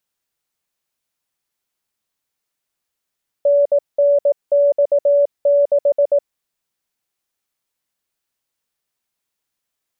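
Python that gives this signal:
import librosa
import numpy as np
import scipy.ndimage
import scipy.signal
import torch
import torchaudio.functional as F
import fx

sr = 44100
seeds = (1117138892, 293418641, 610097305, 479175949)

y = fx.morse(sr, text='NNX6', wpm=18, hz=572.0, level_db=-10.0)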